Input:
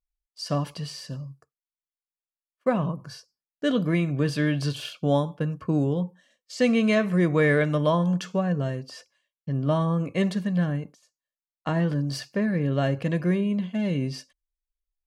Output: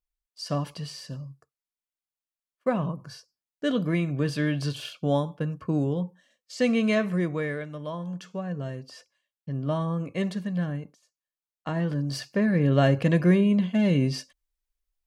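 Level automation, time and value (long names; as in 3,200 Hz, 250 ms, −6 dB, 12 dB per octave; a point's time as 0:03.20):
0:07.07 −2 dB
0:07.69 −14 dB
0:08.87 −4 dB
0:11.71 −4 dB
0:12.76 +4 dB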